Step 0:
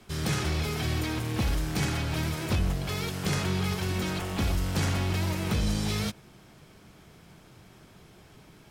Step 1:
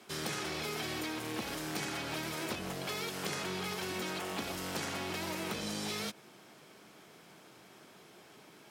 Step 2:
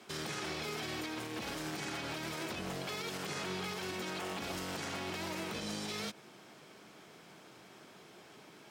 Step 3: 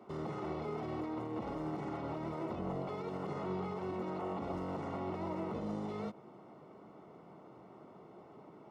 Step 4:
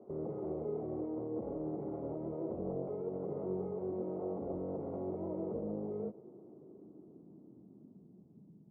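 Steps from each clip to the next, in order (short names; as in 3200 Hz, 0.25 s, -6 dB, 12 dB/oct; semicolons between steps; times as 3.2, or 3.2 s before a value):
HPF 280 Hz 12 dB/oct; compressor, threshold -34 dBFS, peak gain reduction 7 dB
bell 12000 Hz -6.5 dB 0.64 oct; limiter -31 dBFS, peak gain reduction 9 dB; gain +1 dB
polynomial smoothing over 65 samples; gain +3 dB
low-pass sweep 500 Hz -> 180 Hz, 5.8–8.67; gain -3 dB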